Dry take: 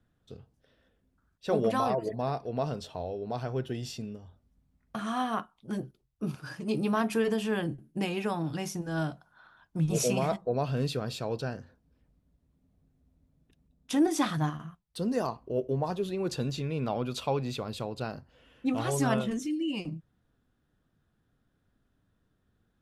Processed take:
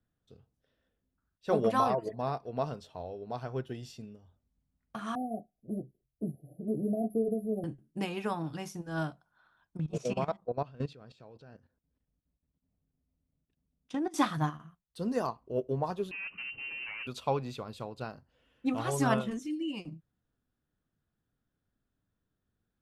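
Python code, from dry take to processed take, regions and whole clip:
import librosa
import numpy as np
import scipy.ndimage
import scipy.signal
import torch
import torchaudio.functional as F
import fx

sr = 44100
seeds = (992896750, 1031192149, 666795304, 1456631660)

y = fx.chain(x, sr, fx.brickwall_bandstop(low_hz=760.0, high_hz=10000.0),
    fx.band_squash(depth_pct=40), at=(5.15, 7.64))
y = fx.chain(y, sr, fx.lowpass(hz=6700.0, slope=12),
    fx.high_shelf(hz=4200.0, db=-6.0),
    fx.level_steps(step_db=14), at=(9.77, 14.14))
y = fx.chain(y, sr, fx.overload_stage(gain_db=32.5),
    fx.freq_invert(carrier_hz=2900), at=(16.11, 17.07))
y = fx.dynamic_eq(y, sr, hz=1100.0, q=1.5, threshold_db=-46.0, ratio=4.0, max_db=4)
y = fx.upward_expand(y, sr, threshold_db=-42.0, expansion=1.5)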